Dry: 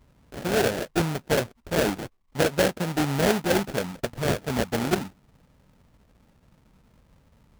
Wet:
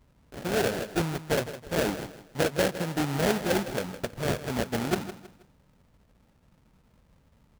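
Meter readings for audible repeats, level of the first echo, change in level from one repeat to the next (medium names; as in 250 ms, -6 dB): 3, -13.0 dB, -9.5 dB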